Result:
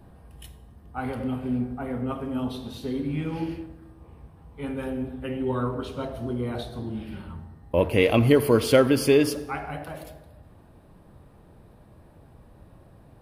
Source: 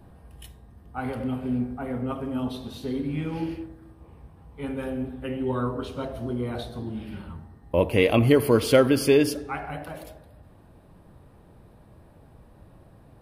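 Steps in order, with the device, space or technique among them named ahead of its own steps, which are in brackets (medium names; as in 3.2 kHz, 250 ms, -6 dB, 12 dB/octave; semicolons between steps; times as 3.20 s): saturated reverb return (on a send at -13 dB: reverberation RT60 0.95 s, pre-delay 9 ms + saturation -24 dBFS, distortion -6 dB)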